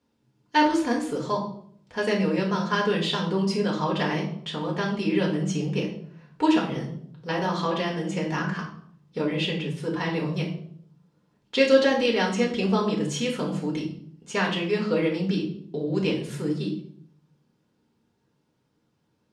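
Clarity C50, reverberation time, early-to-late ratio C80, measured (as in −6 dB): 7.0 dB, 0.65 s, 10.5 dB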